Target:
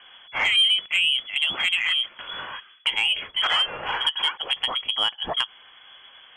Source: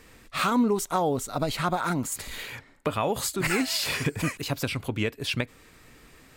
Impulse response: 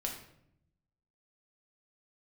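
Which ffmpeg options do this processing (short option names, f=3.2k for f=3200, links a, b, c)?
-af "lowpass=f=2.9k:t=q:w=0.5098,lowpass=f=2.9k:t=q:w=0.6013,lowpass=f=2.9k:t=q:w=0.9,lowpass=f=2.9k:t=q:w=2.563,afreqshift=-3400,asoftclip=type=tanh:threshold=-15.5dB,volume=4.5dB"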